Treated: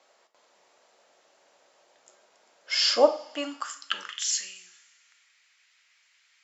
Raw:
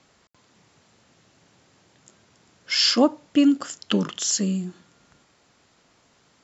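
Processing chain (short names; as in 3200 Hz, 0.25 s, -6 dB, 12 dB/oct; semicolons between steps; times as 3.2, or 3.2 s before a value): two-slope reverb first 0.42 s, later 1.9 s, from -19 dB, DRR 6 dB; high-pass sweep 590 Hz -> 2100 Hz, 3.09–4.29; gain -5 dB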